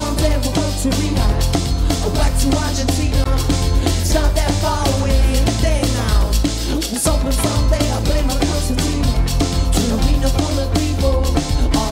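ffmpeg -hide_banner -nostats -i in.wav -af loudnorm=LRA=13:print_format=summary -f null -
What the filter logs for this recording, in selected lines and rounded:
Input Integrated:    -17.7 LUFS
Input True Peak:      -4.0 dBTP
Input LRA:             0.6 LU
Input Threshold:     -27.7 LUFS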